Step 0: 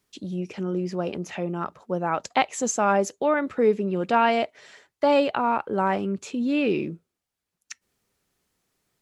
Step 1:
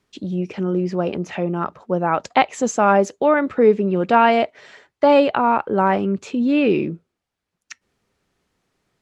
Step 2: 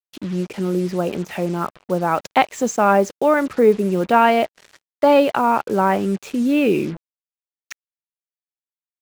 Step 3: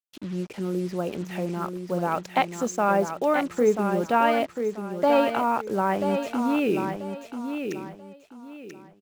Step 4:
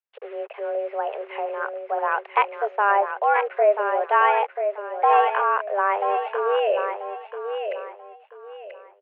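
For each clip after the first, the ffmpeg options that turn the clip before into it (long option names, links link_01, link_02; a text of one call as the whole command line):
ffmpeg -i in.wav -af "aemphasis=mode=reproduction:type=50fm,volume=6dB" out.wav
ffmpeg -i in.wav -af "acrusher=bits=5:mix=0:aa=0.5,areverse,acompressor=mode=upward:threshold=-34dB:ratio=2.5,areverse" out.wav
ffmpeg -i in.wav -af "aecho=1:1:986|1972|2958:0.447|0.125|0.035,volume=-7dB" out.wav
ffmpeg -i in.wav -af "highpass=frequency=240:width_type=q:width=0.5412,highpass=frequency=240:width_type=q:width=1.307,lowpass=frequency=2500:width_type=q:width=0.5176,lowpass=frequency=2500:width_type=q:width=0.7071,lowpass=frequency=2500:width_type=q:width=1.932,afreqshift=200,volume=3dB" out.wav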